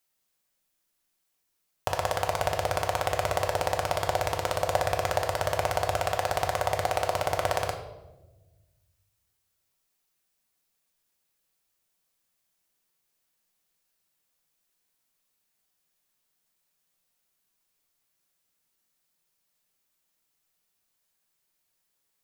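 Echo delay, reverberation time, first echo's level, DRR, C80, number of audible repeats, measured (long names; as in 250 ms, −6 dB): no echo audible, 1.1 s, no echo audible, 2.0 dB, 10.5 dB, no echo audible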